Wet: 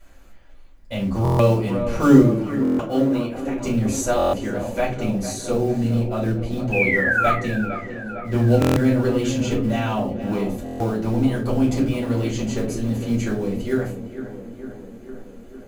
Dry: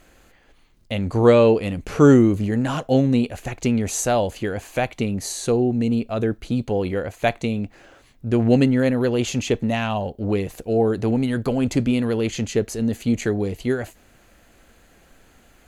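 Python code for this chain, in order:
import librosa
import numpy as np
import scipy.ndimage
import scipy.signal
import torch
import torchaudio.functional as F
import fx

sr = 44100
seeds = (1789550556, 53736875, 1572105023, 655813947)

p1 = fx.bass_treble(x, sr, bass_db=-11, treble_db=-5, at=(2.21, 3.57))
p2 = fx.quant_float(p1, sr, bits=2)
p3 = p1 + F.gain(torch.from_numpy(p2), -3.5).numpy()
p4 = fx.spec_paint(p3, sr, seeds[0], shape='fall', start_s=6.72, length_s=0.6, low_hz=1200.0, high_hz=2600.0, level_db=-14.0)
p5 = p4 + fx.echo_tape(p4, sr, ms=454, feedback_pct=80, wet_db=-10.0, lp_hz=1800.0, drive_db=0.0, wow_cents=24, dry=0)
p6 = fx.room_shoebox(p5, sr, seeds[1], volume_m3=160.0, walls='furnished', distance_m=4.8)
p7 = fx.buffer_glitch(p6, sr, at_s=(1.23, 2.63, 4.17, 8.6, 10.64), block=1024, repeats=6)
y = F.gain(torch.from_numpy(p7), -15.5).numpy()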